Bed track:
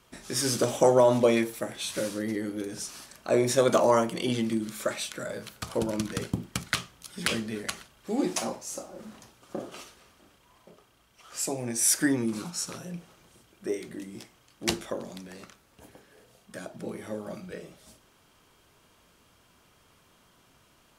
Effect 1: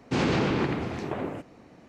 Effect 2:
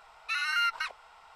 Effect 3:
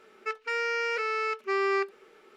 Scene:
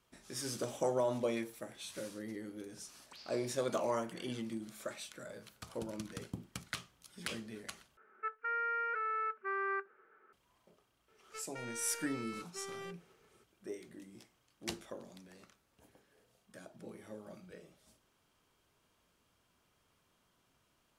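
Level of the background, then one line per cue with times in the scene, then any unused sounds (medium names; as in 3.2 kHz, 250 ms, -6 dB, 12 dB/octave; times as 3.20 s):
bed track -13 dB
3.00 s: add 1 -8 dB + auto-wah 580–4800 Hz, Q 7.9, up, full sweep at -22.5 dBFS
7.97 s: replace with 3 -14.5 dB + resonant low-pass 1.5 kHz, resonance Q 5.2
11.08 s: add 3 -13 dB + saturation -29.5 dBFS
not used: 2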